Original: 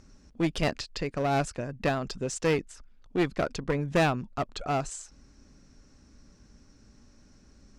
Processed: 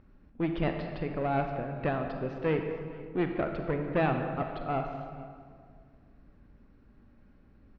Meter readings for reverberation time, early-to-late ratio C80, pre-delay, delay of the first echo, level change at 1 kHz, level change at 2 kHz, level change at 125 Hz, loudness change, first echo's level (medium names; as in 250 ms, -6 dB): 2.0 s, 6.0 dB, 34 ms, 454 ms, -2.0 dB, -4.5 dB, -1.5 dB, -2.5 dB, -19.5 dB